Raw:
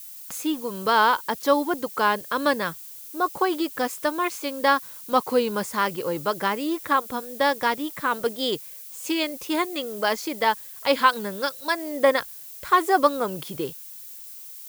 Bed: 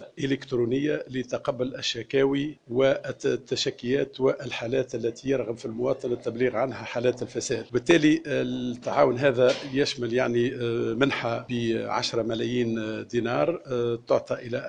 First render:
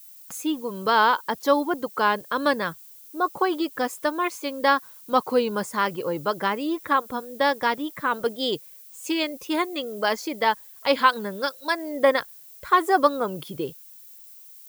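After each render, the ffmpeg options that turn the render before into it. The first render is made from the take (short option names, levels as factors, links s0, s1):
-af "afftdn=nr=8:nf=-41"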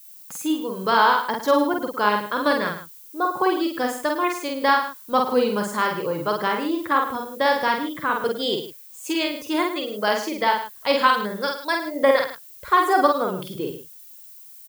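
-filter_complex "[0:a]asplit=2[s0][s1];[s1]adelay=48,volume=0.708[s2];[s0][s2]amix=inputs=2:normalize=0,aecho=1:1:107:0.266"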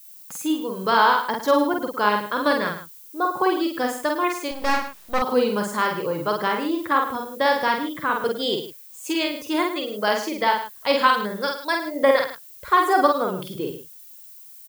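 -filter_complex "[0:a]asettb=1/sr,asplit=3[s0][s1][s2];[s0]atrim=end=4.514[s3];[s1]atrim=start=4.51:end=5.22,asetpts=PTS-STARTPTS,afade=t=in:d=0.004:c=qsin,afade=t=out:st=0.706:d=0.004:c=qsin,aeval=exprs='max(val(0),0)':c=same[s4];[s2]atrim=start=5.216[s5];[s3][s4]acrossfade=d=0.004:c1=hsin:c2=qsin[s6];[s6][s5]acrossfade=d=0.004:c1=qsin:c2=hsin"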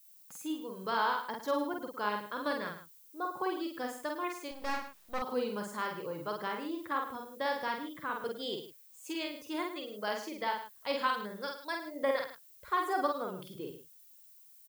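-af "volume=0.211"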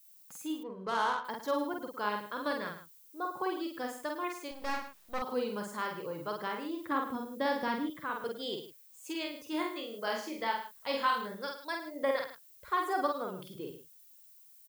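-filter_complex "[0:a]asettb=1/sr,asplit=3[s0][s1][s2];[s0]atrim=end=0.634[s3];[s1]atrim=start=0.63:end=1.25,asetpts=PTS-STARTPTS,afade=t=in:d=0.004:c=qsin,afade=t=out:st=0.616:d=0.004:c=qsin,adynamicsmooth=sensitivity=6.5:basefreq=1600[s4];[s2]atrim=start=1.246[s5];[s3][s4]acrossfade=d=0.004:c1=hsin:c2=qsin[s6];[s6][s5]acrossfade=d=0.004:c1=qsin:c2=hsin,asettb=1/sr,asplit=3[s7][s8][s9];[s7]atrim=end=6.894[s10];[s8]atrim=start=6.89:end=7.9,asetpts=PTS-STARTPTS,afade=t=in:d=0.004:c=qsin,afade=t=out:st=1.006:d=0.004:c=qsin,equalizer=f=220:t=o:w=1.5:g=10.5[s11];[s9]atrim=start=7.896[s12];[s10][s11]acrossfade=d=0.004:c1=hsin:c2=qsin[s13];[s13][s12]acrossfade=d=0.004:c1=qsin:c2=hsin,asettb=1/sr,asplit=3[s14][s15][s16];[s14]atrim=end=9.504[s17];[s15]atrim=start=9.5:end=11.35,asetpts=PTS-STARTPTS,afade=t=in:d=0.004:c=qsin,afade=t=out:st=1.846:d=0.004:c=qsin,asplit=2[s18][s19];[s19]adelay=26,volume=0.562[s20];[s18][s20]amix=inputs=2:normalize=0,atrim=end_sample=81585[s21];[s16]atrim=start=11.346[s22];[s17][s21]acrossfade=d=0.004:c1=hsin:c2=qsin[s23];[s23][s22]acrossfade=d=0.004:c1=qsin:c2=hsin"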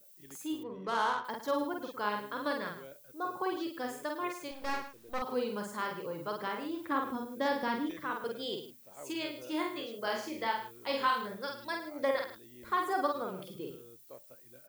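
-filter_complex "[1:a]volume=0.0355[s0];[0:a][s0]amix=inputs=2:normalize=0"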